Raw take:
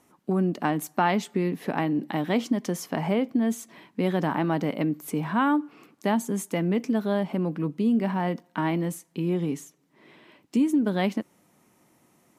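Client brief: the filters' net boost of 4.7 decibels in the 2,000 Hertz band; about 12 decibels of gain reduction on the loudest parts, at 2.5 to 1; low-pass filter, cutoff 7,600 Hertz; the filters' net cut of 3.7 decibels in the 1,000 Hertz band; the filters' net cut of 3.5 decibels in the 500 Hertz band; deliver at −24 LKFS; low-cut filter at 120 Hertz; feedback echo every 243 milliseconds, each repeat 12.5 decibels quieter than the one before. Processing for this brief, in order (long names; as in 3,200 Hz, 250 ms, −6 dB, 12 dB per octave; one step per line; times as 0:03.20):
high-pass filter 120 Hz
low-pass filter 7,600 Hz
parametric band 500 Hz −4 dB
parametric band 1,000 Hz −5 dB
parametric band 2,000 Hz +7.5 dB
downward compressor 2.5 to 1, threshold −39 dBFS
repeating echo 243 ms, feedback 24%, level −12.5 dB
level +14.5 dB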